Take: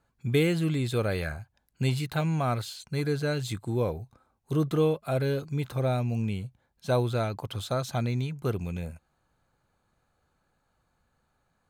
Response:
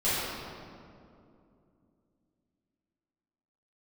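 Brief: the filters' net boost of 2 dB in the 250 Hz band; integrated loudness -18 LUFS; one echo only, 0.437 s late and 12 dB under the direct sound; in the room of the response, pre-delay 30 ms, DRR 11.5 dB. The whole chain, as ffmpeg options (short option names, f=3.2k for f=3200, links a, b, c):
-filter_complex "[0:a]equalizer=f=250:t=o:g=3,aecho=1:1:437:0.251,asplit=2[a][b];[1:a]atrim=start_sample=2205,adelay=30[c];[b][c]afir=irnorm=-1:irlink=0,volume=-24dB[d];[a][d]amix=inputs=2:normalize=0,volume=10dB"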